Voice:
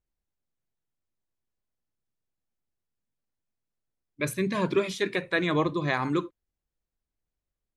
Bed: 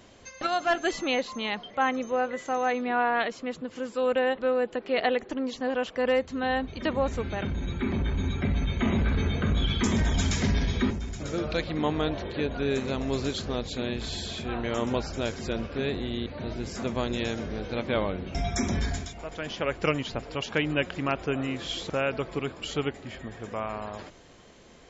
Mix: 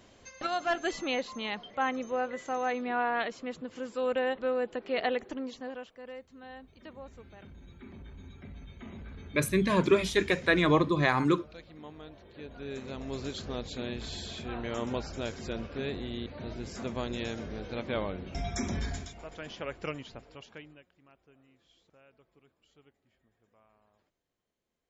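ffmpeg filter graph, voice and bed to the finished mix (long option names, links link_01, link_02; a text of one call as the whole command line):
ffmpeg -i stem1.wav -i stem2.wav -filter_complex "[0:a]adelay=5150,volume=1.5dB[link_01];[1:a]volume=10dB,afade=type=out:start_time=5.23:duration=0.71:silence=0.16788,afade=type=in:start_time=12.25:duration=1.36:silence=0.188365,afade=type=out:start_time=19.03:duration=1.8:silence=0.0398107[link_02];[link_01][link_02]amix=inputs=2:normalize=0" out.wav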